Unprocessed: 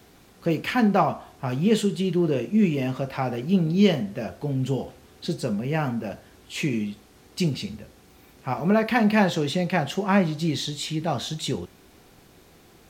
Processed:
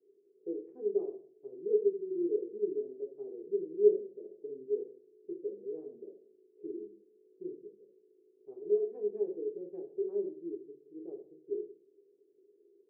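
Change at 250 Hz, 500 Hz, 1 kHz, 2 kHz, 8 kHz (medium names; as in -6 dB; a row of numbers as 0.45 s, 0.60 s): -19.5 dB, -4.5 dB, under -35 dB, under -40 dB, under -40 dB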